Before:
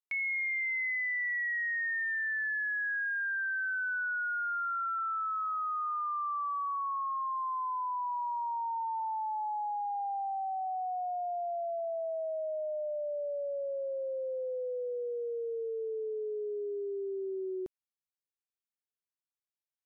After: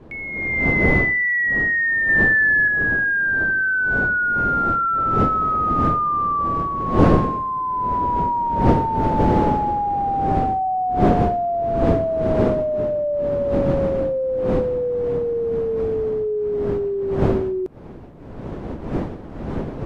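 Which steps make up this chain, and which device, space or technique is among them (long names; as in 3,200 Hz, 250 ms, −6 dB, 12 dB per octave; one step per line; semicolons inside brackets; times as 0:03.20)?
0:02.09–0:02.68: spectral tilt +4.5 dB per octave
smartphone video outdoors (wind on the microphone 360 Hz −36 dBFS; automatic gain control gain up to 13.5 dB; AAC 96 kbit/s 32,000 Hz)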